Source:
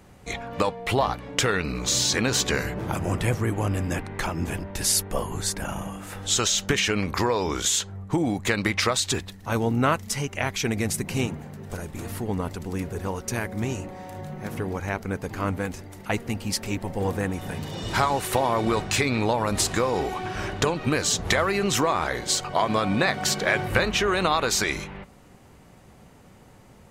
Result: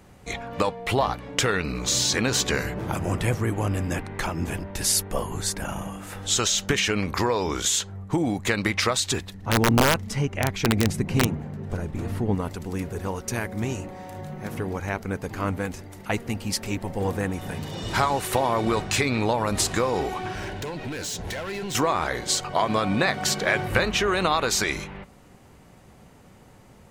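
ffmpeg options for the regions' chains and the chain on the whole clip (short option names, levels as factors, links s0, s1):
-filter_complex "[0:a]asettb=1/sr,asplit=3[s0][s1][s2];[s0]atrim=end=9.344[s3];[s1]atrim=start=9.34:end=12.35,asetpts=PTS-STARTPTS,afade=t=in:d=0.004:c=qsin,afade=t=out:st=3.006:d=0.004:c=qsin,lowpass=f=3100:p=1,lowshelf=f=440:g=6,aeval=exprs='(mod(3.35*val(0)+1,2)-1)/3.35':c=same[s4];[s2]atrim=start=12.346[s5];[s3][s4]acrossfade=d=0.004:c1=hsin:c2=qsin[s6];[s6][s5]acrossfade=d=0.004:c1=qsin:c2=hsin,asettb=1/sr,asplit=3[s7][s8][s9];[s7]atrim=end=20.344[s10];[s8]atrim=start=20.34:end=21.75,asetpts=PTS-STARTPTS,afade=t=in:d=0.004:c=qsin,afade=t=out:st=1.406:d=0.004:c=qsin,acompressor=threshold=0.0447:ratio=2:attack=3.2:release=140:knee=1:detection=peak,asoftclip=type=hard:threshold=0.0376,asuperstop=centerf=1200:order=4:qfactor=6[s11];[s9]atrim=start=21.746[s12];[s10][s11]acrossfade=d=0.004:c1=hsin:c2=qsin[s13];[s13][s12]acrossfade=d=0.004:c1=qsin:c2=hsin"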